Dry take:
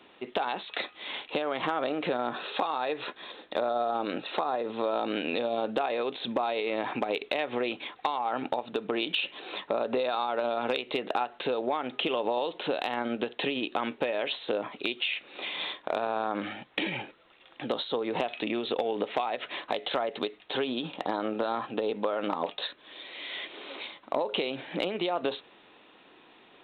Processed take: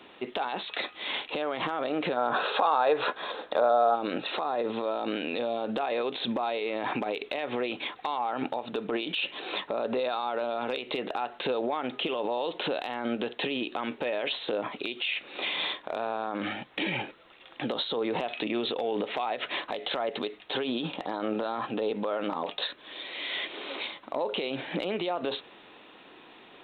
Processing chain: peak limiter -25 dBFS, peak gain reduction 9 dB; time-frequency box 2.17–3.95 s, 430–1700 Hz +7 dB; trim +4.5 dB

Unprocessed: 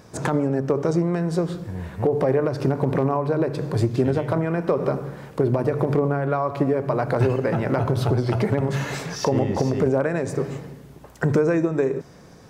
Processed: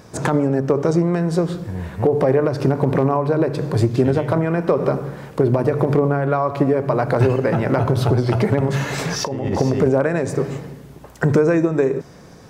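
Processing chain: 8.98–9.61 s: compressor with a negative ratio -26 dBFS, ratio -1; trim +4 dB

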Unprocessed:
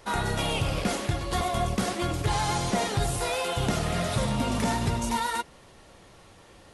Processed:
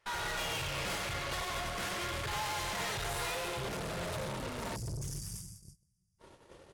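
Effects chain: peaking EQ 1.9 kHz +10.5 dB 2.2 oct, from 3.35 s 310 Hz; echo from a far wall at 16 m, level -10 dB; plate-style reverb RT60 2.1 s, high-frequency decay 0.85×, DRR 4 dB; 4.75–6.19 s: spectral selection erased 210–4600 Hz; valve stage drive 32 dB, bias 0.65; gate -47 dBFS, range -19 dB; peaking EQ 240 Hz -9.5 dB 0.68 oct; band-stop 740 Hz, Q 12; trim -3 dB; AAC 64 kbps 48 kHz

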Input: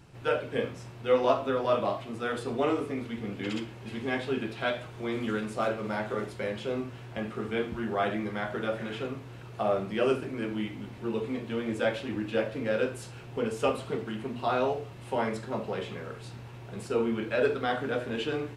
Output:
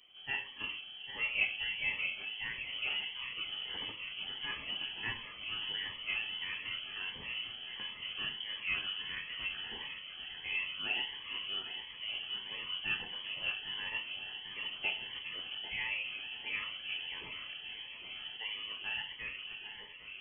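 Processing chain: fade out at the end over 1.73 s; peaking EQ 410 Hz -10.5 dB 0.38 oct; on a send: echo whose repeats swap between lows and highs 367 ms, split 1 kHz, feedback 89%, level -10 dB; on the sum: speed mistake 48 kHz file played as 44.1 kHz; frequency inversion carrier 3.2 kHz; Shepard-style phaser rising 1.5 Hz; trim -6 dB

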